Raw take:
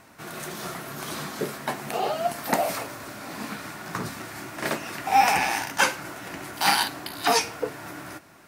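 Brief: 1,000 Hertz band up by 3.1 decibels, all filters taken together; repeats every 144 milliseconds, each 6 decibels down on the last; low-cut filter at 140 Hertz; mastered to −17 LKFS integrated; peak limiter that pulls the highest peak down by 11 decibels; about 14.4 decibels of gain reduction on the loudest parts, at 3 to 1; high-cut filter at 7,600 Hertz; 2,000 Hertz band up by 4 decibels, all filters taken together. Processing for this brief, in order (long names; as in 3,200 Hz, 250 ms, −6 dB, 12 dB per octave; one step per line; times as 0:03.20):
high-pass filter 140 Hz
low-pass filter 7,600 Hz
parametric band 1,000 Hz +3.5 dB
parametric band 2,000 Hz +4 dB
downward compressor 3 to 1, threshold −32 dBFS
brickwall limiter −26 dBFS
repeating echo 144 ms, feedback 50%, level −6 dB
level +18 dB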